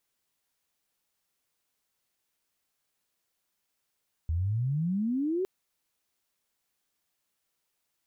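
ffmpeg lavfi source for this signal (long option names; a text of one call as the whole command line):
ffmpeg -f lavfi -i "aevalsrc='pow(10,(-25.5-0.5*t/1.16)/20)*sin(2*PI*77*1.16/log(390/77)*(exp(log(390/77)*t/1.16)-1))':duration=1.16:sample_rate=44100" out.wav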